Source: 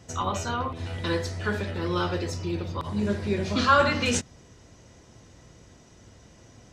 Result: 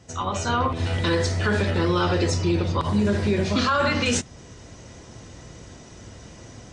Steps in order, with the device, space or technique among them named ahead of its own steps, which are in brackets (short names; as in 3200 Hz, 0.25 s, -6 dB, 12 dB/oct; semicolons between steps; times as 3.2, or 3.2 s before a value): low-bitrate web radio (AGC gain up to 9.5 dB; limiter -12.5 dBFS, peak gain reduction 10.5 dB; MP3 48 kbps 22050 Hz)